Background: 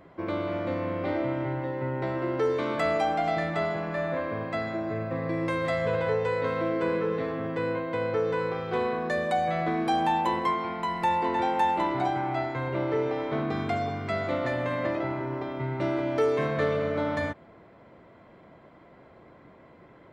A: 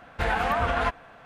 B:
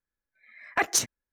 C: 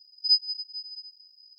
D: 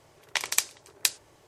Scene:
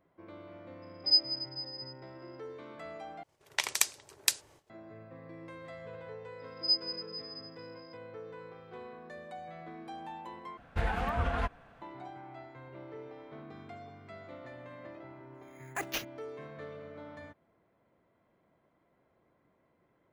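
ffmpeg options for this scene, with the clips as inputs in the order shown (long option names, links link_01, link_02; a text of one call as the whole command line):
ffmpeg -i bed.wav -i cue0.wav -i cue1.wav -i cue2.wav -i cue3.wav -filter_complex "[3:a]asplit=2[link_01][link_02];[0:a]volume=-19dB[link_03];[link_01]agate=range=-10dB:threshold=-49dB:ratio=16:release=100:detection=peak[link_04];[4:a]agate=range=-16dB:threshold=-56dB:ratio=16:release=239:detection=peak[link_05];[link_02]dynaudnorm=framelen=140:gausssize=3:maxgain=10dB[link_06];[1:a]lowshelf=frequency=280:gain=9.5[link_07];[2:a]acrusher=samples=5:mix=1:aa=0.000001[link_08];[link_03]asplit=3[link_09][link_10][link_11];[link_09]atrim=end=3.234[link_12];[link_05]atrim=end=1.47,asetpts=PTS-STARTPTS,volume=-2.5dB[link_13];[link_10]atrim=start=4.696:end=10.574[link_14];[link_07]atrim=end=1.25,asetpts=PTS-STARTPTS,volume=-10dB[link_15];[link_11]atrim=start=11.816[link_16];[link_04]atrim=end=1.58,asetpts=PTS-STARTPTS,volume=-3dB,afade=type=in:duration=0.004:curve=hsin,afade=type=out:start_time=1.576:duration=0.004:curve=hsin,adelay=820[link_17];[link_06]atrim=end=1.58,asetpts=PTS-STARTPTS,volume=-15.5dB,afade=type=in:duration=0.004:curve=hsin,afade=type=out:start_time=1.576:duration=0.004:curve=hsin,adelay=6390[link_18];[link_08]atrim=end=1.32,asetpts=PTS-STARTPTS,volume=-12dB,afade=type=in:duration=0.004:curve=hsin,afade=type=out:start_time=1.316:duration=0.004:curve=hsin,adelay=14990[link_19];[link_12][link_13]acrossfade=duration=0.004:curve1=hsin:curve2=hsin[link_20];[link_20][link_14]acrossfade=duration=0.004:curve1=hsin:curve2=hsin[link_21];[link_21][link_15]acrossfade=duration=0.004:curve1=hsin:curve2=hsin[link_22];[link_22][link_16]acrossfade=duration=0.004:curve1=hsin:curve2=hsin[link_23];[link_23][link_17][link_18][link_19]amix=inputs=4:normalize=0" out.wav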